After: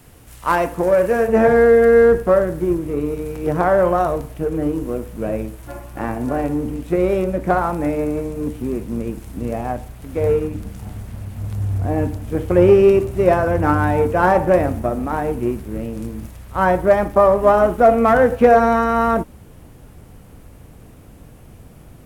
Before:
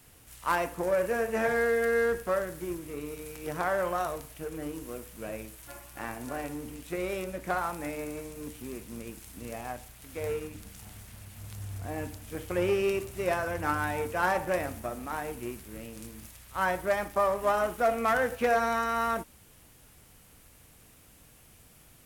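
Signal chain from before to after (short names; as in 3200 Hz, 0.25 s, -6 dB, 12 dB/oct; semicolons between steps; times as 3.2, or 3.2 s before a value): tilt shelf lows +4.5 dB, about 1300 Hz, from 1.27 s lows +9 dB; gain +9 dB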